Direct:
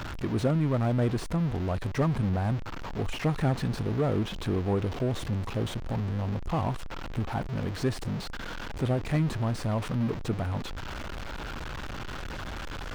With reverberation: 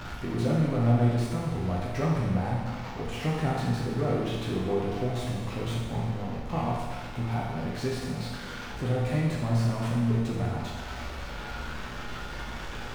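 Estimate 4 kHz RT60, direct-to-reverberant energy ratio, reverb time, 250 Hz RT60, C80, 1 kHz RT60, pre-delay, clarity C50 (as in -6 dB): 1.4 s, -5.0 dB, 1.4 s, 1.4 s, 2.5 dB, 1.4 s, 9 ms, 0.0 dB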